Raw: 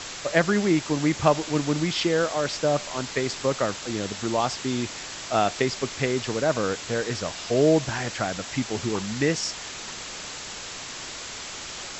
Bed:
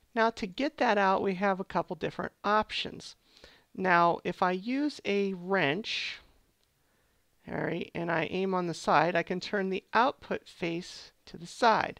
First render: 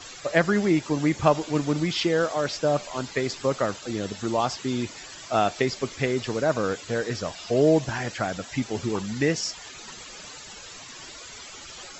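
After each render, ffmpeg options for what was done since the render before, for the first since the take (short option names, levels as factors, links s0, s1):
-af "afftdn=nr=13:nf=-37"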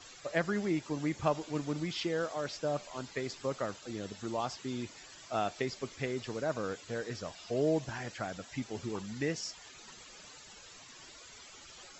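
-af "volume=0.299"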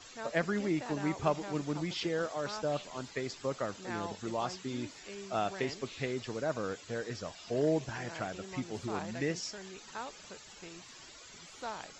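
-filter_complex "[1:a]volume=0.141[s0];[0:a][s0]amix=inputs=2:normalize=0"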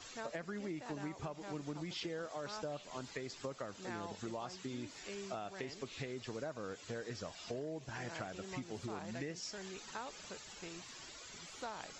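-af "alimiter=limit=0.0668:level=0:latency=1:release=438,acompressor=threshold=0.01:ratio=5"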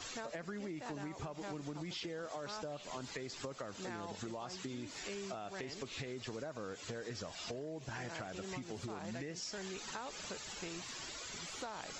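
-filter_complex "[0:a]asplit=2[s0][s1];[s1]alimiter=level_in=4.73:limit=0.0631:level=0:latency=1:release=38,volume=0.211,volume=1[s2];[s0][s2]amix=inputs=2:normalize=0,acompressor=threshold=0.01:ratio=6"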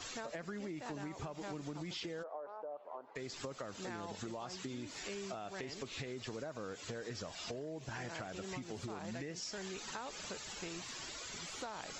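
-filter_complex "[0:a]asplit=3[s0][s1][s2];[s0]afade=t=out:st=2.22:d=0.02[s3];[s1]asuperpass=centerf=690:order=4:qfactor=1.1,afade=t=in:st=2.22:d=0.02,afade=t=out:st=3.15:d=0.02[s4];[s2]afade=t=in:st=3.15:d=0.02[s5];[s3][s4][s5]amix=inputs=3:normalize=0"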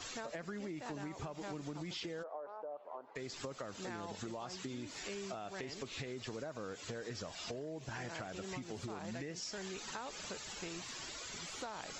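-af anull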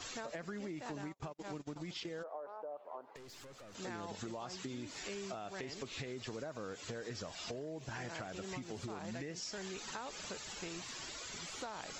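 -filter_complex "[0:a]asplit=3[s0][s1][s2];[s0]afade=t=out:st=1.01:d=0.02[s3];[s1]agate=range=0.0126:threshold=0.00562:ratio=16:release=100:detection=peak,afade=t=in:st=1.01:d=0.02,afade=t=out:st=2.2:d=0.02[s4];[s2]afade=t=in:st=2.2:d=0.02[s5];[s3][s4][s5]amix=inputs=3:normalize=0,asettb=1/sr,asplit=3[s6][s7][s8];[s6]atrim=end=3.164[s9];[s7]atrim=start=3.16:end=3.75,asetpts=PTS-STARTPTS,afade=t=in:d=0.004:c=qsin,afade=t=out:st=0.586:d=0.004:c=qsin,aeval=exprs='(tanh(398*val(0)+0.3)-tanh(0.3))/398':c=same[s10];[s8]atrim=start=3.746[s11];[s9][s10]acrossfade=d=0.004:c1=hsin:c2=qsin[s12];[s12][s11]acrossfade=d=0.004:c1=qsin:c2=hsin"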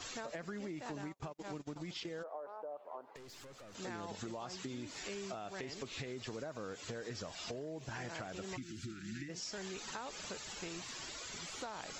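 -filter_complex "[0:a]asplit=3[s0][s1][s2];[s0]afade=t=out:st=8.56:d=0.02[s3];[s1]asuperstop=centerf=700:order=20:qfactor=0.72,afade=t=in:st=8.56:d=0.02,afade=t=out:st=9.28:d=0.02[s4];[s2]afade=t=in:st=9.28:d=0.02[s5];[s3][s4][s5]amix=inputs=3:normalize=0"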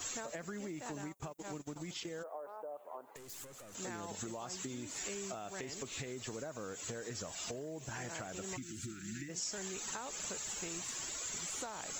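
-af "aexciter=amount=5.7:drive=3.2:freq=6700"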